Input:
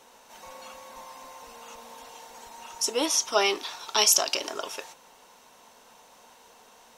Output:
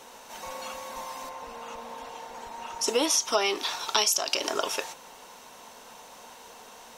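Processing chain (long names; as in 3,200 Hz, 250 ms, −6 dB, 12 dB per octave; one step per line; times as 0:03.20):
0:01.29–0:02.88: high-shelf EQ 3,900 Hz −11.5 dB
downward compressor 16 to 1, threshold −27 dBFS, peak gain reduction 12.5 dB
level +6.5 dB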